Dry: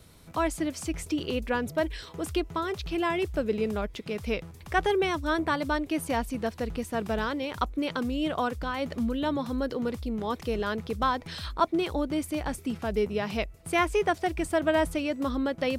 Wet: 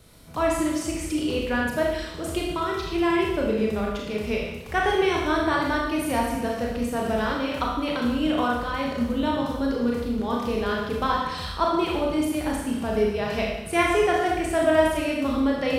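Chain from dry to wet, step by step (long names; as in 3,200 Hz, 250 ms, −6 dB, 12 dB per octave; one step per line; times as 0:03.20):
four-comb reverb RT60 1 s, combs from 26 ms, DRR −2.5 dB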